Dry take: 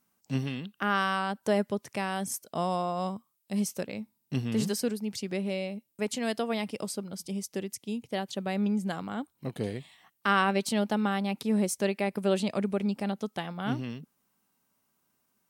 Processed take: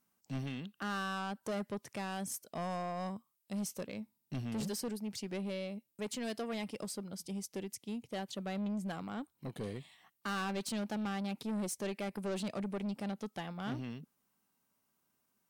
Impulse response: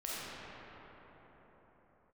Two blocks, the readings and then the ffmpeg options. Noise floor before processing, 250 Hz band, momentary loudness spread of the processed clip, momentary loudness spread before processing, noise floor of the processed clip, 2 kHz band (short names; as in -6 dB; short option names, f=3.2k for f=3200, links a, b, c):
-76 dBFS, -8.0 dB, 7 LU, 9 LU, -80 dBFS, -10.0 dB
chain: -af "asoftclip=type=tanh:threshold=-28.5dB,volume=-4.5dB"